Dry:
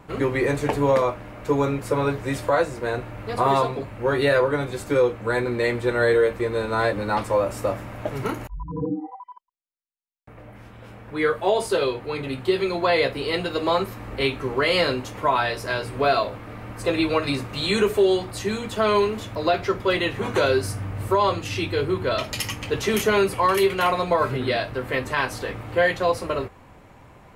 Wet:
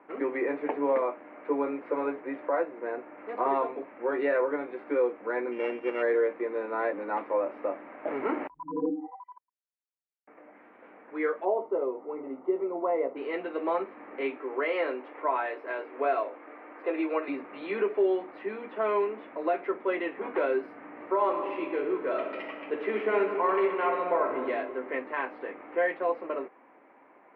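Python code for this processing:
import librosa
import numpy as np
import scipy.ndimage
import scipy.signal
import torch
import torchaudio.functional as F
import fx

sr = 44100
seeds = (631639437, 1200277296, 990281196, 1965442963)

y = fx.air_absorb(x, sr, metres=190.0, at=(2.2, 3.18))
y = fx.sample_sort(y, sr, block=16, at=(5.51, 6.01), fade=0.02)
y = fx.env_flatten(y, sr, amount_pct=50, at=(8.06, 8.9), fade=0.02)
y = fx.savgol(y, sr, points=65, at=(11.44, 13.15), fade=0.02)
y = fx.highpass(y, sr, hz=280.0, slope=24, at=(14.37, 17.28))
y = fx.reverb_throw(y, sr, start_s=20.78, length_s=3.72, rt60_s=1.7, drr_db=4.0)
y = fx.dynamic_eq(y, sr, hz=1600.0, q=0.98, threshold_db=-37.0, ratio=4.0, max_db=-3)
y = scipy.signal.sosfilt(scipy.signal.ellip(3, 1.0, 50, [280.0, 2200.0], 'bandpass', fs=sr, output='sos'), y)
y = F.gain(torch.from_numpy(y), -5.5).numpy()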